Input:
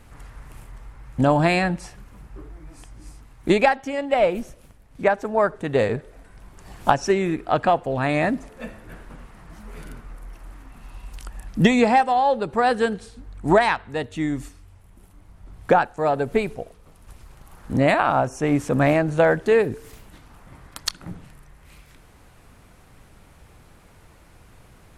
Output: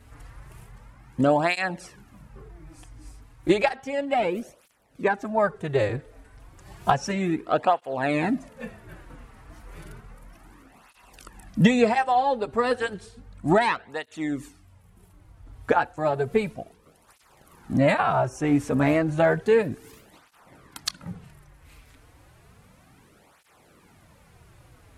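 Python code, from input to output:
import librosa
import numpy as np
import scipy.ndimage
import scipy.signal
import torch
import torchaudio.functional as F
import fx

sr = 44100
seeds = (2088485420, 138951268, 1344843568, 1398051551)

y = fx.flanger_cancel(x, sr, hz=0.32, depth_ms=5.9)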